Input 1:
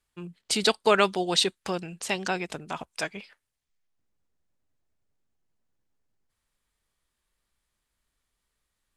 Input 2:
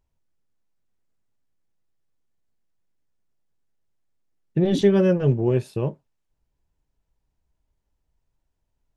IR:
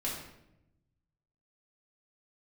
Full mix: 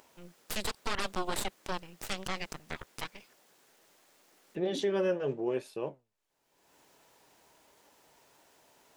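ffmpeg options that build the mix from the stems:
-filter_complex "[0:a]aeval=exprs='0.501*(cos(1*acos(clip(val(0)/0.501,-1,1)))-cos(1*PI/2))+0.251*(cos(6*acos(clip(val(0)/0.501,-1,1)))-cos(6*PI/2))+0.0501*(cos(7*acos(clip(val(0)/0.501,-1,1)))-cos(7*PI/2))':c=same,volume=-3dB[a];[1:a]highpass=410,acompressor=mode=upward:threshold=-34dB:ratio=2.5,flanger=delay=3.3:depth=7:regen=83:speed=0.89:shape=triangular,volume=-1dB[b];[a][b]amix=inputs=2:normalize=0,alimiter=limit=-20.5dB:level=0:latency=1:release=57"

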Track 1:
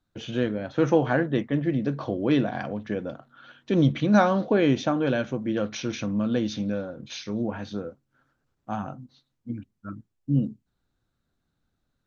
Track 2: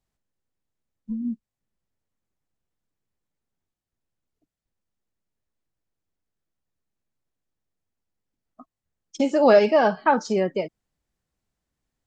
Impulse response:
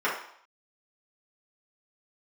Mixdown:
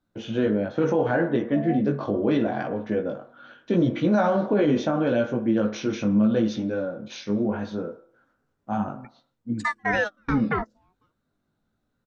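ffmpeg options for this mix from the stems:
-filter_complex "[0:a]equalizer=f=340:w=0.33:g=7.5,flanger=delay=17:depth=2.8:speed=0.75,volume=-0.5dB,asplit=3[a][b][c];[b]volume=-19dB[d];[1:a]acompressor=threshold=-17dB:ratio=5,aeval=exprs='val(0)*sin(2*PI*980*n/s+980*0.55/0.44*sin(2*PI*0.44*n/s))':c=same,adelay=450,volume=0dB[e];[c]apad=whole_len=551773[f];[e][f]sidechaingate=range=-39dB:threshold=-43dB:ratio=16:detection=peak[g];[2:a]atrim=start_sample=2205[h];[d][h]afir=irnorm=-1:irlink=0[i];[a][g][i]amix=inputs=3:normalize=0,alimiter=limit=-13dB:level=0:latency=1:release=40"

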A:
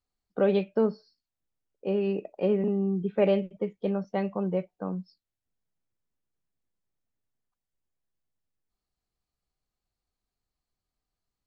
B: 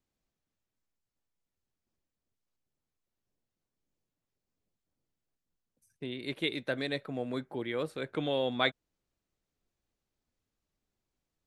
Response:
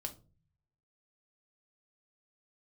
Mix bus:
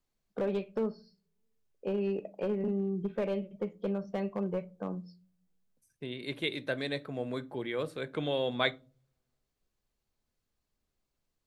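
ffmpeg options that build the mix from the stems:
-filter_complex "[0:a]acompressor=threshold=-26dB:ratio=4,volume=23.5dB,asoftclip=hard,volume=-23.5dB,volume=-5.5dB,asplit=2[a][b];[b]volume=-4dB[c];[1:a]volume=-3.5dB,asplit=2[d][e];[e]volume=-4.5dB[f];[2:a]atrim=start_sample=2205[g];[c][f]amix=inputs=2:normalize=0[h];[h][g]afir=irnorm=-1:irlink=0[i];[a][d][i]amix=inputs=3:normalize=0"

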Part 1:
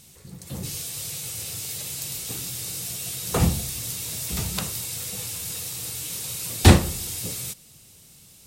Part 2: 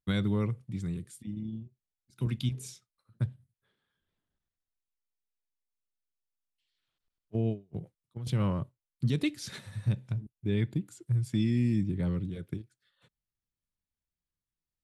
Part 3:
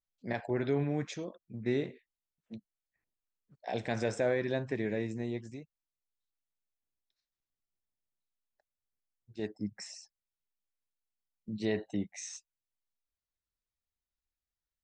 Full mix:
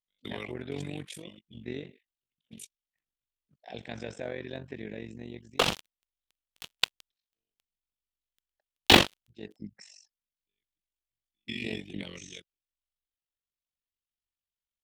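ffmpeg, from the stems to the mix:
-filter_complex "[0:a]acrossover=split=250 5700:gain=0.141 1 0.0891[a][b][c];[a][b][c]amix=inputs=3:normalize=0,acrusher=bits=3:mix=0:aa=0.5,adelay=2250,volume=2dB[d];[1:a]acrossover=split=310 2900:gain=0.158 1 0.2[e][f][g];[e][f][g]amix=inputs=3:normalize=0,aexciter=amount=6.3:drive=5.3:freq=2.1k,volume=-2dB,asplit=3[h][i][j];[h]atrim=end=7.64,asetpts=PTS-STARTPTS,afade=t=out:st=7.636:d=0.004:c=hsin[k];[i]atrim=start=7.64:end=10.18,asetpts=PTS-STARTPTS,volume=0[l];[j]atrim=start=10.18,asetpts=PTS-STARTPTS,afade=t=in:d=0.004:c=hsin[m];[k][l][m]concat=n=3:v=0:a=1[n];[2:a]equalizer=f=180:t=o:w=1.4:g=3.5,volume=-5dB,asplit=2[o][p];[p]apad=whole_len=654258[q];[n][q]sidechaingate=range=-57dB:threshold=-53dB:ratio=16:detection=peak[r];[d][r][o]amix=inputs=3:normalize=0,equalizer=f=3.1k:t=o:w=0.83:g=10.5,tremolo=f=47:d=0.824"

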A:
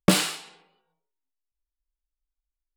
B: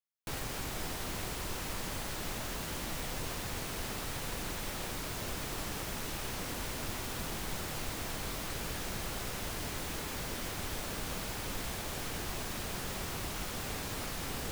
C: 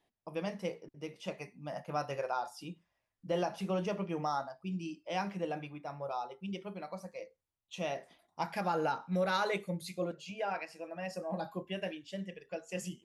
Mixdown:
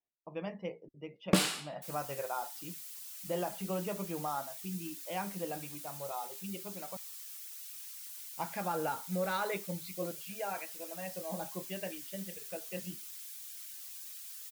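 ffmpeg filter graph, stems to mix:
-filter_complex "[0:a]adelay=1250,volume=-7.5dB[a];[1:a]highpass=f=710:w=0.5412,highpass=f=710:w=1.3066,aderivative,adelay=1550,volume=-4.5dB[b];[2:a]lowpass=4k,volume=-2.5dB,asplit=3[c][d][e];[c]atrim=end=6.97,asetpts=PTS-STARTPTS,afade=t=out:st=6.966:d=0.004:c=hsin[f];[d]atrim=start=6.97:end=8.24,asetpts=PTS-STARTPTS,volume=0[g];[e]atrim=start=8.24,asetpts=PTS-STARTPTS,afade=t=in:d=0.004:c=hsin[h];[f][g][h]concat=n=3:v=0:a=1[i];[a][b][i]amix=inputs=3:normalize=0,afftdn=nr=19:nf=-59"

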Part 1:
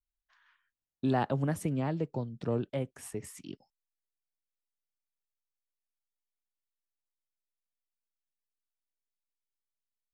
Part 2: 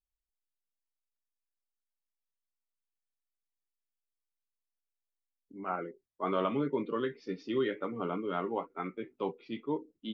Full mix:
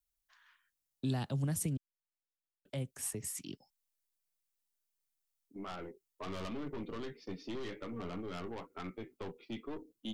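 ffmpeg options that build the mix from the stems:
-filter_complex "[0:a]highshelf=f=4.7k:g=10.5,volume=-0.5dB,asplit=3[a][b][c];[a]atrim=end=1.77,asetpts=PTS-STARTPTS,afade=t=out:st=1.766:d=0.004:c=hsin[d];[b]atrim=start=1.77:end=2.65,asetpts=PTS-STARTPTS,volume=0[e];[c]atrim=start=2.65,asetpts=PTS-STARTPTS,afade=t=in:d=0.004:c=hsin[f];[d][e][f]concat=n=3:v=0:a=1[g];[1:a]agate=range=-11dB:threshold=-50dB:ratio=16:detection=peak,aeval=exprs='(tanh(50.1*val(0)+0.35)-tanh(0.35))/50.1':c=same,volume=2.5dB[h];[g][h]amix=inputs=2:normalize=0,acrossover=split=210|3000[i][j][k];[j]acompressor=threshold=-45dB:ratio=3[l];[i][l][k]amix=inputs=3:normalize=0"

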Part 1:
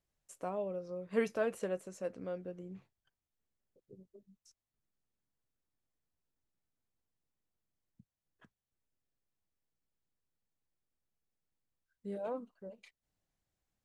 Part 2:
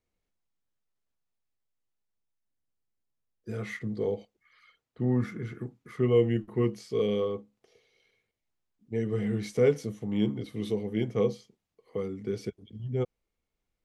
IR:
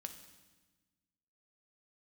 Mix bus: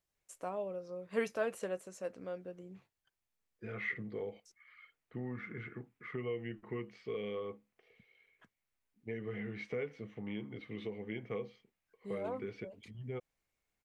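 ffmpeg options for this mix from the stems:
-filter_complex "[0:a]volume=1dB[a];[1:a]acompressor=threshold=-30dB:ratio=4,lowpass=f=2.3k:t=q:w=2.2,adelay=150,volume=-4dB[b];[a][b]amix=inputs=2:normalize=0,lowshelf=f=410:g=-6.5"

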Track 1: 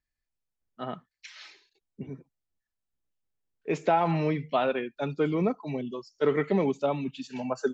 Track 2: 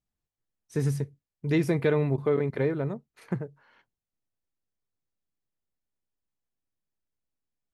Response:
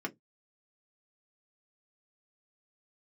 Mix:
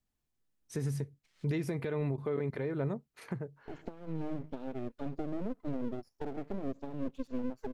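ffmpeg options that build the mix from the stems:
-filter_complex "[0:a]acompressor=threshold=-34dB:ratio=10,firequalizer=gain_entry='entry(120,0);entry(250,10);entry(840,-21);entry(1300,-12)':delay=0.05:min_phase=1,aeval=exprs='max(val(0),0)':c=same,volume=1.5dB[a];[1:a]acompressor=threshold=-24dB:ratio=6,volume=2dB,asplit=2[b][c];[c]apad=whole_len=345450[d];[a][d]sidechaincompress=threshold=-44dB:ratio=8:attack=25:release=443[e];[e][b]amix=inputs=2:normalize=0,alimiter=level_in=1dB:limit=-24dB:level=0:latency=1:release=375,volume=-1dB"

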